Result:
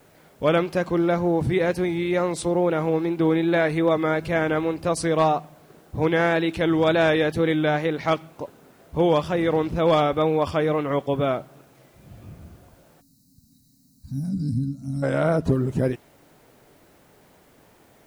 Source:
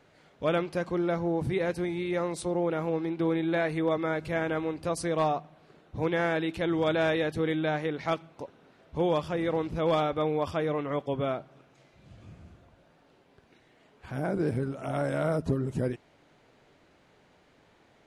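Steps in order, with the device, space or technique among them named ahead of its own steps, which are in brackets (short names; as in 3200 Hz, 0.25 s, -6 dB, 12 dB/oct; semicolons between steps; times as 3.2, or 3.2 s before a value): plain cassette with noise reduction switched in (mismatched tape noise reduction decoder only; wow and flutter; white noise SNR 40 dB); 13.01–15.03 spectral gain 300–3800 Hz -30 dB; 14.29–15.45 high shelf 9200 Hz -8.5 dB; gain +7 dB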